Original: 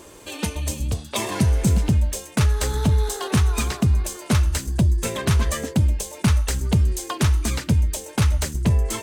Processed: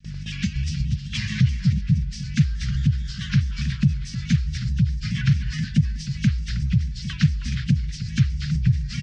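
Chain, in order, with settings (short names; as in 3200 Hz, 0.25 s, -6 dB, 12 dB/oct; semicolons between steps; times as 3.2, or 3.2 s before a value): nonlinear frequency compression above 2400 Hz 1.5:1; hum 50 Hz, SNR 20 dB; elliptic band-stop 190–1700 Hz, stop band 50 dB; gate with hold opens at -32 dBFS; LPF 4900 Hz 12 dB/oct; compressor, threshold -29 dBFS, peak gain reduction 14 dB; bell 140 Hz +14.5 dB 0.64 oct; feedback echo 0.315 s, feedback 16%, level -12 dB; shaped vibrato square 4.7 Hz, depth 100 cents; gain +4 dB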